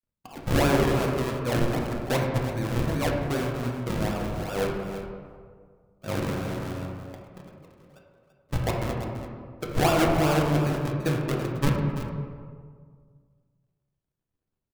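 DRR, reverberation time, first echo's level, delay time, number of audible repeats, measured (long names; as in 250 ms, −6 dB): −1.5 dB, 1.9 s, −11.0 dB, 336 ms, 1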